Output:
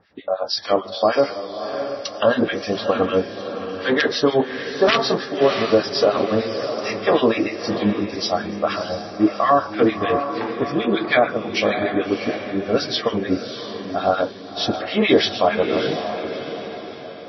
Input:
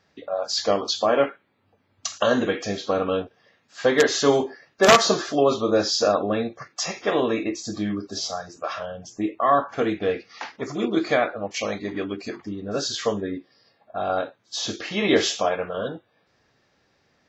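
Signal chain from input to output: high shelf 5300 Hz +4.5 dB; notches 50/100/150/200 Hz; vocal rider within 4 dB 2 s; harmonic tremolo 6.6 Hz, depth 100%, crossover 1300 Hz; air absorption 160 m; on a send: diffused feedback echo 0.648 s, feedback 46%, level -9 dB; on the sum: maximiser +12.5 dB; gain -3.5 dB; MP3 24 kbps 22050 Hz

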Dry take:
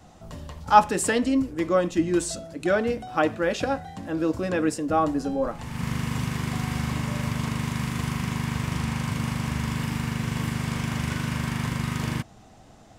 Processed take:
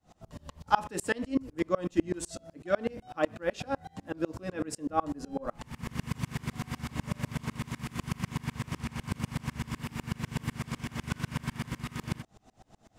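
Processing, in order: dB-ramp tremolo swelling 8 Hz, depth 31 dB

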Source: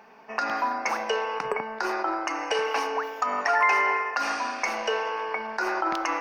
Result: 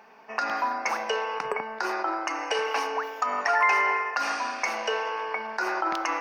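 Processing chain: low shelf 320 Hz -5.5 dB

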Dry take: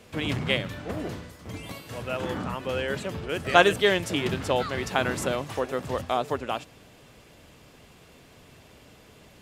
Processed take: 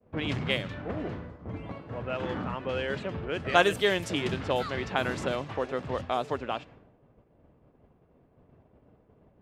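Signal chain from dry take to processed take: low-pass opened by the level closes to 730 Hz, open at -20.5 dBFS; expander -46 dBFS; in parallel at +3 dB: compressor, threshold -38 dBFS, peak gain reduction 24 dB; on the sum: gain -5 dB

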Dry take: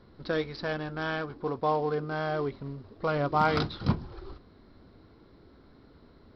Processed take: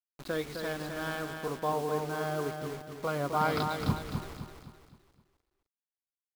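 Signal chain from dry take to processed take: 1.72–3.77 HPF 98 Hz 12 dB/oct; bit-crush 7-bit; feedback echo 0.259 s, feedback 42%, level -6 dB; gain -4 dB

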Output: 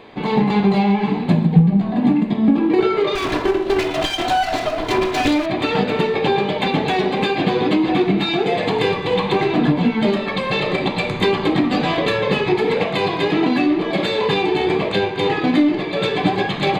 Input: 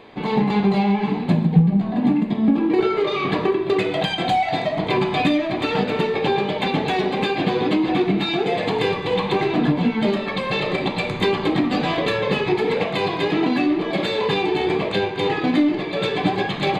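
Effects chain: 3.15–5.46 minimum comb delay 2.9 ms; gain +2.5 dB

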